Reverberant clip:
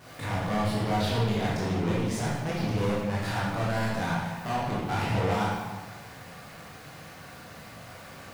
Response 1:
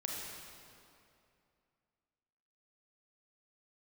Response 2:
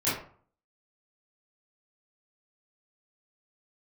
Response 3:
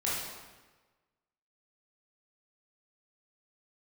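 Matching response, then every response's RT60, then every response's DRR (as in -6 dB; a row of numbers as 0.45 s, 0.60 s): 3; 2.6 s, 0.50 s, 1.3 s; -2.0 dB, -12.0 dB, -8.0 dB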